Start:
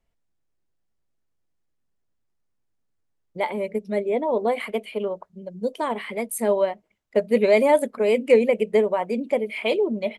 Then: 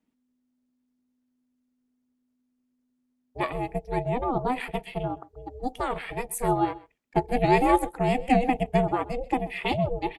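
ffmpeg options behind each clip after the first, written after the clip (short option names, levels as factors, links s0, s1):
-af "bandreject=f=470:w=12,aecho=1:1:130:0.0944,aeval=exprs='val(0)*sin(2*PI*250*n/s)':c=same"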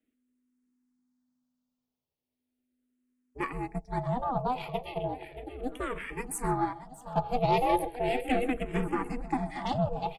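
-filter_complex "[0:a]aeval=exprs='(tanh(5.01*val(0)+0.35)-tanh(0.35))/5.01':c=same,aecho=1:1:629|1258|1887|2516|3145|3774:0.224|0.13|0.0753|0.0437|0.0253|0.0147,asplit=2[s0][s1];[s1]afreqshift=-0.36[s2];[s0][s2]amix=inputs=2:normalize=1"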